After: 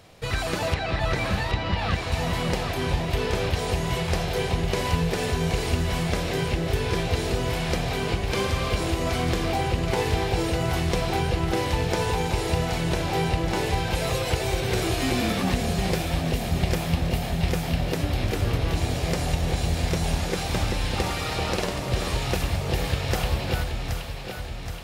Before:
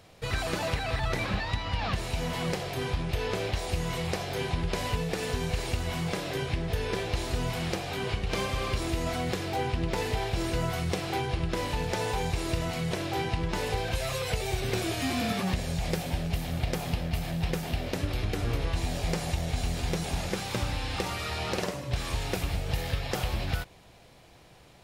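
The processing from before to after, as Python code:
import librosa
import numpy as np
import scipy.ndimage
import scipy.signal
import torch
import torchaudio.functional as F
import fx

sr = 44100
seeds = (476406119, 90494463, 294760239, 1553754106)

p1 = fx.lowpass(x, sr, hz=5600.0, slope=12, at=(0.74, 2.12))
p2 = p1 + fx.echo_alternate(p1, sr, ms=387, hz=930.0, feedback_pct=76, wet_db=-4, dry=0)
y = p2 * 10.0 ** (3.5 / 20.0)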